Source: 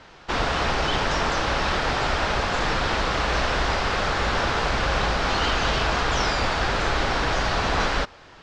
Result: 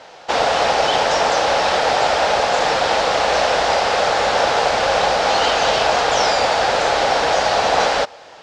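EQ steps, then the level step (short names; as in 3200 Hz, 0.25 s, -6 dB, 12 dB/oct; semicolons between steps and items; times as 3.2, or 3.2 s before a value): HPF 310 Hz 6 dB/oct; band shelf 630 Hz +9.5 dB 1.1 oct; high shelf 4100 Hz +8 dB; +3.0 dB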